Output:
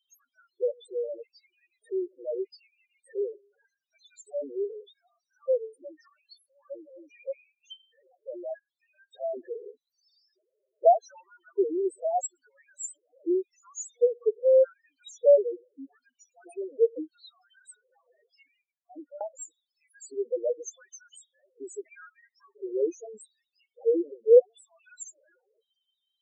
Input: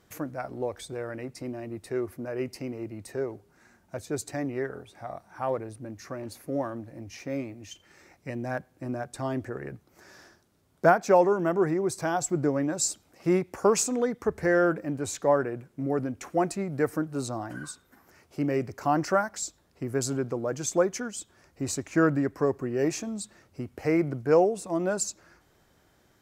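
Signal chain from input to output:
auto-filter high-pass square 0.82 Hz 490–3,400 Hz
spectral peaks only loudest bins 2
0:18.48–0:19.21: formant resonators in series i

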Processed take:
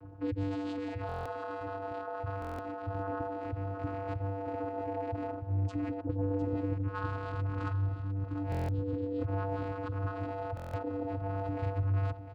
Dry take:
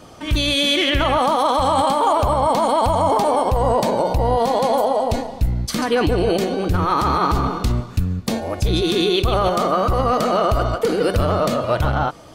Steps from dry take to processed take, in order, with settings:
spectral dynamics exaggerated over time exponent 1.5
low-pass filter 1,400 Hz 12 dB per octave
compressor whose output falls as the input rises −31 dBFS, ratio −1
hard clipping −31 dBFS, distortion −7 dB
phase shifter 0.32 Hz, delay 2 ms, feedback 36%
0:06.00–0:08.49: all-pass dispersion highs, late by 94 ms, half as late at 350 Hz
channel vocoder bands 8, square 97.8 Hz
single-tap delay 704 ms −11.5 dB
buffer that repeats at 0:01.07/0:02.40/0:08.50/0:10.55, samples 1,024, times 7

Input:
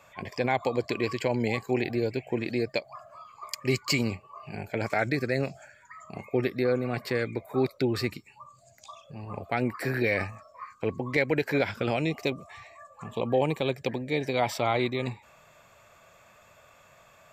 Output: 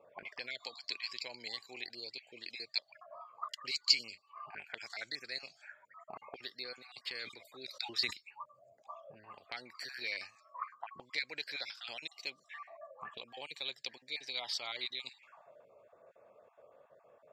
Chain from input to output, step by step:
time-frequency cells dropped at random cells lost 21%
envelope filter 390–4,500 Hz, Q 3.2, up, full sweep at −32 dBFS
0:07.16–0:08.13: level that may fall only so fast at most 96 dB per second
level +5 dB

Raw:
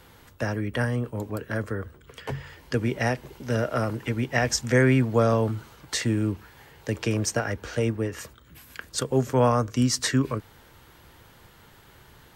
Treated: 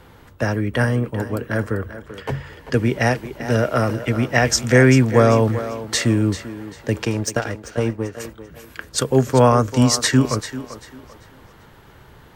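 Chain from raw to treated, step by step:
0:07.05–0:08.20: power curve on the samples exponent 1.4
feedback echo with a high-pass in the loop 392 ms, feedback 37%, high-pass 260 Hz, level −11 dB
one half of a high-frequency compander decoder only
level +7 dB

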